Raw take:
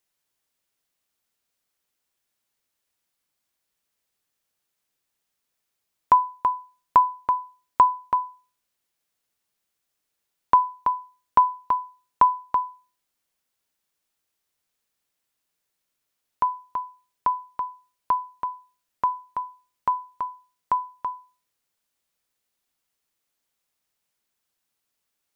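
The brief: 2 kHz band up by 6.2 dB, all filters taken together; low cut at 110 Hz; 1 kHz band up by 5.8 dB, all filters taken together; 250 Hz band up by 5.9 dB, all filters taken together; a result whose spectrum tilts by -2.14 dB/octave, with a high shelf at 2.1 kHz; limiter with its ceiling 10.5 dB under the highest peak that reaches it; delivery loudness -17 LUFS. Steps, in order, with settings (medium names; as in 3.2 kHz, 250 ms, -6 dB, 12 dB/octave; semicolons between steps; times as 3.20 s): high-pass 110 Hz; peaking EQ 250 Hz +7.5 dB; peaking EQ 1 kHz +4 dB; peaking EQ 2 kHz +5 dB; treble shelf 2.1 kHz +3 dB; trim +6.5 dB; peak limiter -4 dBFS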